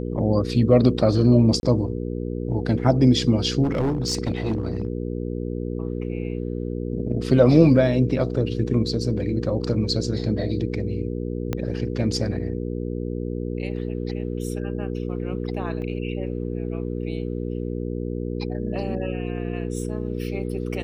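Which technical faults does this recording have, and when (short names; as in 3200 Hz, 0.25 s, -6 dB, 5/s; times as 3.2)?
hum 60 Hz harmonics 8 -28 dBFS
1.6–1.63 gap 31 ms
3.63–4.88 clipped -18.5 dBFS
11.53 pop -12 dBFS
15.82 gap 2.4 ms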